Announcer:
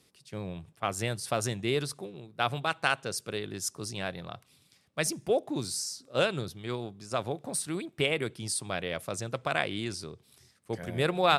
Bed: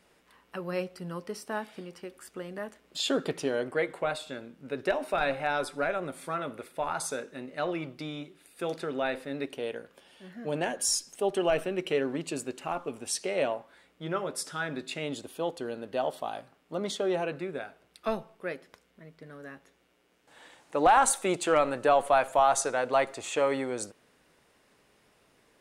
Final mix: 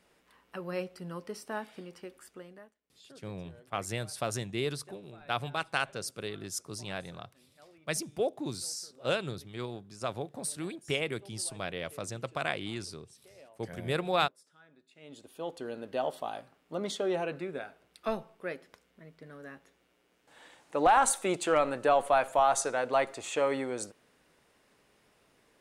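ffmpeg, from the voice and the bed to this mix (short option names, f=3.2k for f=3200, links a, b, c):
-filter_complex "[0:a]adelay=2900,volume=-3.5dB[a];[1:a]volume=22dB,afade=t=out:st=2.1:d=0.64:silence=0.0630957,afade=t=in:st=14.94:d=0.86:silence=0.0562341[b];[a][b]amix=inputs=2:normalize=0"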